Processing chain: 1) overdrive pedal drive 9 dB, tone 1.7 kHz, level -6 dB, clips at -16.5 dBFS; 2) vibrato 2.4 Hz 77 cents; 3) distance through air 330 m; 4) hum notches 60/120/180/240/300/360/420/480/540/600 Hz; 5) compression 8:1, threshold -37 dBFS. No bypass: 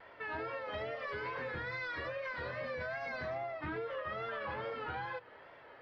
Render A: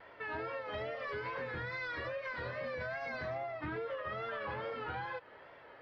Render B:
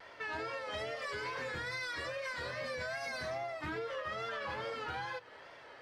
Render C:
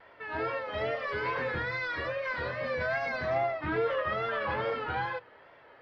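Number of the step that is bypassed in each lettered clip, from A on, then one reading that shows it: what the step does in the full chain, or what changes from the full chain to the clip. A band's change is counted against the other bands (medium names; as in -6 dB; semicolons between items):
4, 125 Hz band +1.5 dB; 3, 4 kHz band +7.0 dB; 5, mean gain reduction 6.5 dB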